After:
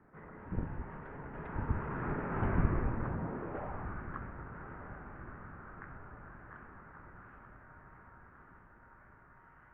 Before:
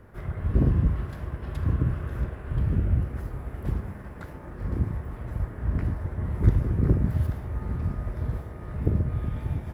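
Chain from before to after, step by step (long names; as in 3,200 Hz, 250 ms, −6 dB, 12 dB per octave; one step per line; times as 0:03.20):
source passing by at 0:02.52, 22 m/s, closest 8.3 metres
high-pass filter sweep 80 Hz → 1,600 Hz, 0:02.39–0:04.00
feedback delay with all-pass diffusion 1,306 ms, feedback 56%, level −12 dB
single-sideband voice off tune −230 Hz 280–2,400 Hz
level +10 dB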